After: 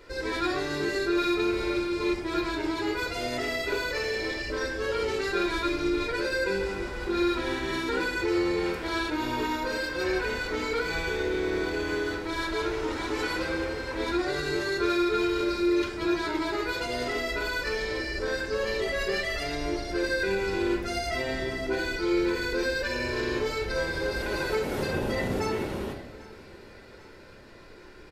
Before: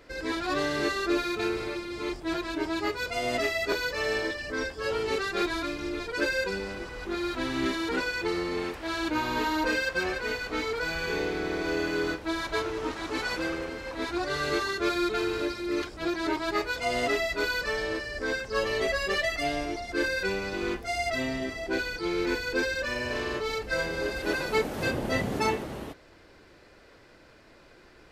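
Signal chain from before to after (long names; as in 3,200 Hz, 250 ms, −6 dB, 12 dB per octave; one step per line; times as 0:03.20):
brickwall limiter −24 dBFS, peak gain reduction 10 dB
repeating echo 794 ms, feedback 57%, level −21.5 dB
convolution reverb RT60 0.95 s, pre-delay 3 ms, DRR 1.5 dB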